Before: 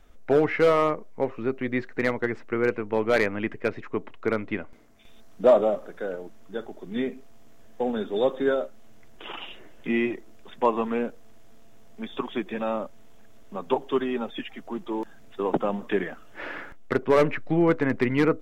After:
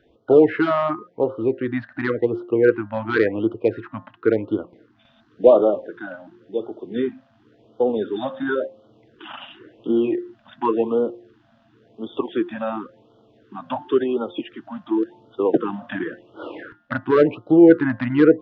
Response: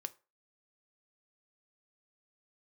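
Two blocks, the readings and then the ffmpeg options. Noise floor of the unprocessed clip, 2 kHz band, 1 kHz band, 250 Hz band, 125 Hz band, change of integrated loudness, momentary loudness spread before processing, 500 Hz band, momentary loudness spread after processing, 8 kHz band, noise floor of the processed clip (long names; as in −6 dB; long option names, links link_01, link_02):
−45 dBFS, +1.5 dB, +1.5 dB, +7.0 dB, +2.0 dB, +5.5 dB, 17 LU, +5.0 dB, 21 LU, can't be measured, −59 dBFS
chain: -af "highpass=100,equalizer=frequency=110:width_type=q:width=4:gain=8,equalizer=frequency=180:width_type=q:width=4:gain=-4,equalizer=frequency=330:width_type=q:width=4:gain=10,equalizer=frequency=480:width_type=q:width=4:gain=7,equalizer=frequency=1500:width_type=q:width=4:gain=6,equalizer=frequency=2200:width_type=q:width=4:gain=-8,lowpass=frequency=4000:width=0.5412,lowpass=frequency=4000:width=1.3066,bandreject=frequency=177.1:width_type=h:width=4,bandreject=frequency=354.2:width_type=h:width=4,bandreject=frequency=531.3:width_type=h:width=4,bandreject=frequency=708.4:width_type=h:width=4,bandreject=frequency=885.5:width_type=h:width=4,bandreject=frequency=1062.6:width_type=h:width=4,bandreject=frequency=1239.7:width_type=h:width=4,bandreject=frequency=1416.8:width_type=h:width=4,bandreject=frequency=1593.9:width_type=h:width=4,bandreject=frequency=1771:width_type=h:width=4,bandreject=frequency=1948.1:width_type=h:width=4,afftfilt=real='re*(1-between(b*sr/1024,370*pow(2100/370,0.5+0.5*sin(2*PI*0.93*pts/sr))/1.41,370*pow(2100/370,0.5+0.5*sin(2*PI*0.93*pts/sr))*1.41))':imag='im*(1-between(b*sr/1024,370*pow(2100/370,0.5+0.5*sin(2*PI*0.93*pts/sr))/1.41,370*pow(2100/370,0.5+0.5*sin(2*PI*0.93*pts/sr))*1.41))':win_size=1024:overlap=0.75,volume=1.5dB"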